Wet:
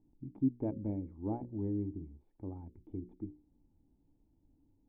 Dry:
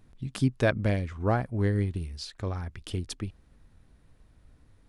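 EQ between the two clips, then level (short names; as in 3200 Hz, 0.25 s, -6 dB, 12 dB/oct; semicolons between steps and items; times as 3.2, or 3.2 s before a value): vocal tract filter u; notches 60/120/180/240/300/360/420/480/540 Hz; +1.0 dB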